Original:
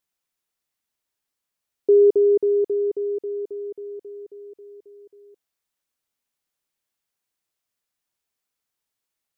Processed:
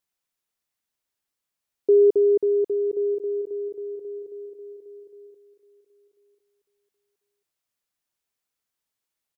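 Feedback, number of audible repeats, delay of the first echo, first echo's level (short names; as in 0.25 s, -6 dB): 21%, 2, 1.042 s, -18.0 dB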